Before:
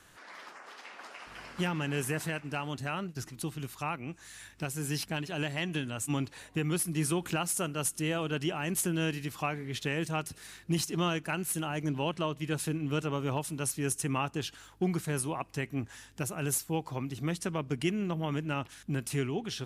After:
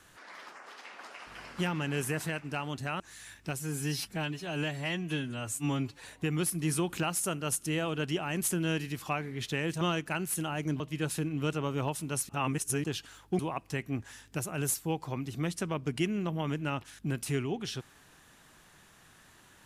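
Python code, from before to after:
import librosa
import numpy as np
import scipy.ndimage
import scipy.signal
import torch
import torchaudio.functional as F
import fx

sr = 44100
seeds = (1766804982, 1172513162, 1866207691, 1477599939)

y = fx.edit(x, sr, fx.cut(start_s=3.0, length_s=1.14),
    fx.stretch_span(start_s=4.74, length_s=1.62, factor=1.5),
    fx.cut(start_s=10.14, length_s=0.85),
    fx.cut(start_s=11.98, length_s=0.31),
    fx.reverse_span(start_s=13.78, length_s=0.55),
    fx.cut(start_s=14.88, length_s=0.35), tone=tone)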